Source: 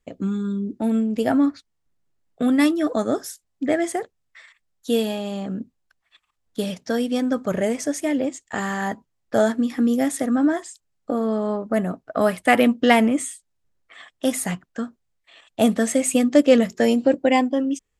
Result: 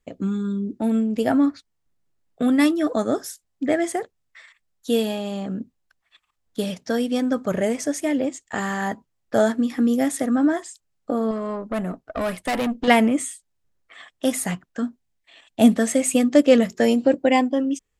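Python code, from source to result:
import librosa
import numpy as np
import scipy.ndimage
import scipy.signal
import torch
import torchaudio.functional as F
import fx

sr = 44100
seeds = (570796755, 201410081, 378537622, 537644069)

y = fx.tube_stage(x, sr, drive_db=20.0, bias=0.35, at=(11.31, 12.88))
y = fx.graphic_eq_31(y, sr, hz=(250, 500, 1250), db=(7, -4, -6), at=(14.82, 15.76))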